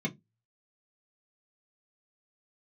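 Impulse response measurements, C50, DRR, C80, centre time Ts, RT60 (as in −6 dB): 22.5 dB, −3.0 dB, 32.0 dB, 11 ms, 0.15 s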